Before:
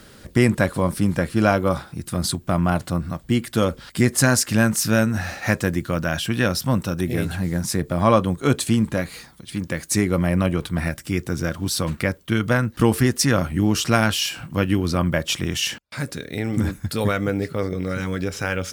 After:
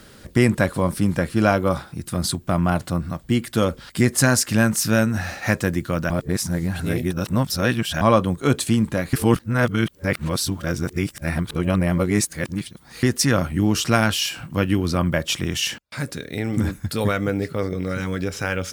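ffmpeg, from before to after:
-filter_complex "[0:a]asplit=5[a][b][c][d][e];[a]atrim=end=6.102[f];[b]atrim=start=6.098:end=8.012,asetpts=PTS-STARTPTS,areverse[g];[c]atrim=start=8.008:end=9.132[h];[d]atrim=start=9.128:end=13.032,asetpts=PTS-STARTPTS,areverse[i];[e]atrim=start=13.028[j];[f][g]acrossfade=d=0.004:c1=hsin:c2=hsin[k];[k][h]acrossfade=d=0.004:c1=hsin:c2=hsin[l];[l][i]acrossfade=d=0.004:c1=hsin:c2=hsin[m];[m][j]acrossfade=d=0.004:c1=hsin:c2=hsin"

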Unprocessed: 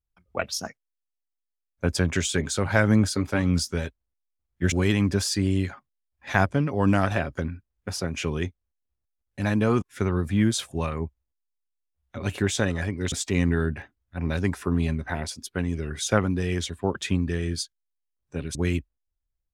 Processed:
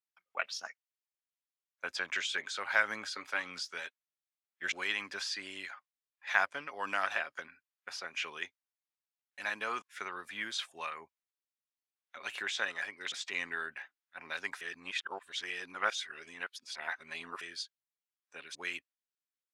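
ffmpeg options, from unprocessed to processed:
-filter_complex "[0:a]asplit=3[a][b][c];[a]atrim=end=14.612[d];[b]atrim=start=14.608:end=17.412,asetpts=PTS-STARTPTS,areverse[e];[c]atrim=start=17.408[f];[d][e]acrossfade=d=0.004:c1=hsin:c2=hsin[g];[g][f]acrossfade=d=0.004:c1=hsin:c2=hsin,highpass=1.4k,aemphasis=mode=reproduction:type=cd,acrossover=split=5200[h][i];[i]acompressor=threshold=-53dB:ratio=4:attack=1:release=60[j];[h][j]amix=inputs=2:normalize=0"

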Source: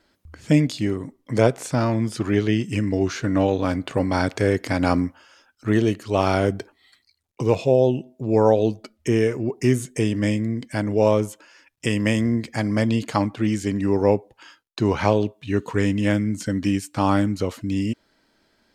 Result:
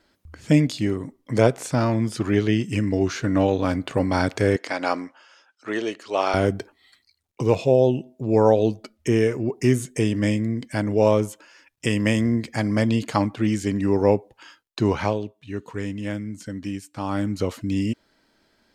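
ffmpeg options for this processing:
-filter_complex "[0:a]asettb=1/sr,asplit=3[a][b][c];[a]atrim=end=4.564[d];[b]atrim=start=4.56:end=6.34,asetpts=PTS-STARTPTS,afade=t=in:d=0.004:c=qsin,afade=t=out:st=1.776:d=0.004:c=qsin,highpass=470,lowpass=7k[e];[c]atrim=start=6.336[f];[d][e]acrossfade=d=0.004:c1=hsin:c2=qsin[g];[g][f]acrossfade=d=0.004:c1=qsin:c2=hsin,asplit=3[h][i][j];[h]atrim=end=15.21,asetpts=PTS-STARTPTS,afade=t=out:st=14.87:d=0.34:silence=0.375837[k];[i]atrim=start=15.21:end=17.09,asetpts=PTS-STARTPTS,volume=-8.5dB[l];[j]atrim=start=17.09,asetpts=PTS-STARTPTS,afade=t=in:d=0.34:silence=0.375837[m];[k][l][m]concat=n=3:v=0:a=1"

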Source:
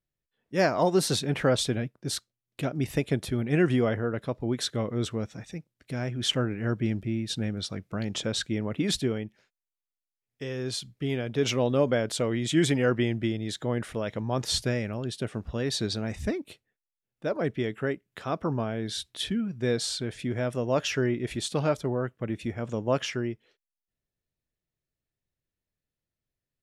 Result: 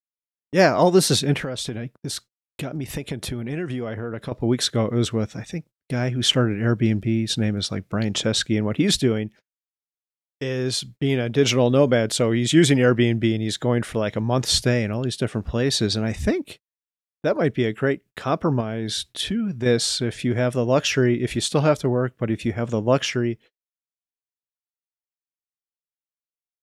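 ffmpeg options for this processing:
-filter_complex "[0:a]asettb=1/sr,asplit=3[a][b][c];[a]atrim=end=1.374[d];[b]atrim=start=1.37:end=4.32,asetpts=PTS-STARTPTS,afade=t=in:d=0.004:c=qsin,afade=t=out:st=2.946:d=0.004:c=qsin,acompressor=threshold=-33dB:ratio=6:attack=3.2:release=140:knee=1:detection=peak[e];[c]atrim=start=4.316[f];[d][e]acrossfade=d=0.004:c1=hsin:c2=qsin[g];[g][f]acrossfade=d=0.004:c1=qsin:c2=hsin,asettb=1/sr,asplit=3[h][i][j];[h]atrim=end=18.604[k];[i]atrim=start=18.6:end=19.66,asetpts=PTS-STARTPTS,afade=t=in:d=0.004:c=qsin,afade=t=out:st=1.056:d=0.004:c=qsin,acompressor=threshold=-30dB:ratio=2.5:attack=3.2:release=140:knee=1:detection=peak[l];[j]atrim=start=19.656[m];[k][l]acrossfade=d=0.004:c1=hsin:c2=qsin[n];[n][m]acrossfade=d=0.004:c1=qsin:c2=hsin,agate=range=-40dB:threshold=-49dB:ratio=16:detection=peak,adynamicequalizer=threshold=0.0112:dfrequency=920:dqfactor=0.84:tfrequency=920:tqfactor=0.84:attack=5:release=100:ratio=0.375:range=2:mode=cutabove:tftype=bell,volume=8dB"

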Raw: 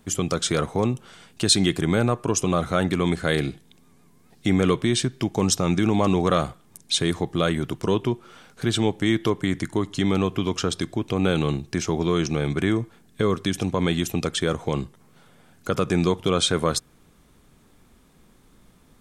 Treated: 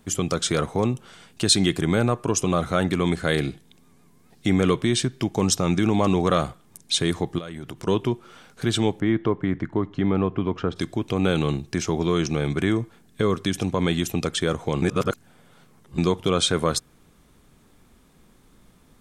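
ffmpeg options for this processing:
-filter_complex "[0:a]asettb=1/sr,asplit=3[a][b][c];[a]atrim=end=7.384[d];[b]atrim=start=7.38:end=7.87,asetpts=PTS-STARTPTS,afade=t=in:d=0.004:c=qsin,afade=t=out:st=0.486:d=0.004:c=qsin,acompressor=threshold=-30dB:ratio=12:attack=3.2:release=140:knee=1:detection=peak[e];[c]atrim=start=7.866[f];[d][e]acrossfade=d=0.004:c1=hsin:c2=qsin[g];[g][f]acrossfade=d=0.004:c1=qsin:c2=hsin,asplit=3[h][i][j];[h]afade=t=out:st=8.99:d=0.02[k];[i]lowpass=1.7k,afade=t=in:st=8.99:d=0.02,afade=t=out:st=10.75:d=0.02[l];[j]afade=t=in:st=10.75:d=0.02[m];[k][l][m]amix=inputs=3:normalize=0,asplit=3[n][o][p];[n]atrim=end=14.822[q];[o]atrim=start=14.818:end=15.982,asetpts=PTS-STARTPTS,areverse[r];[p]atrim=start=15.978[s];[q][r]acrossfade=d=0.004:c1=hsin:c2=hsin[t];[t][s]acrossfade=d=0.004:c1=hsin:c2=hsin"

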